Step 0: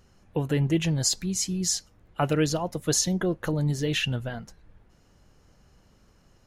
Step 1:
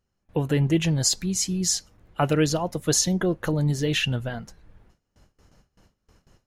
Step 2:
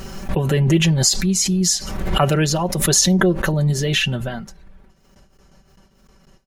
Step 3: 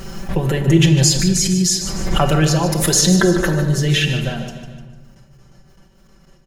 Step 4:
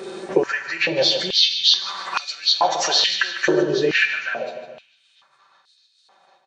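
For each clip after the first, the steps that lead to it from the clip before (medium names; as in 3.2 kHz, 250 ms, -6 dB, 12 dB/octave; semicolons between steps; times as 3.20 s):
gate with hold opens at -48 dBFS; trim +2.5 dB
comb 5.2 ms; swell ahead of each attack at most 41 dB/s; trim +3.5 dB
on a send: feedback delay 150 ms, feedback 49%, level -11 dB; on the sum: simulated room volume 1000 m³, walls mixed, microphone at 0.83 m
knee-point frequency compression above 1.8 kHz 1.5:1; step-sequenced high-pass 2.3 Hz 390–4200 Hz; trim -2 dB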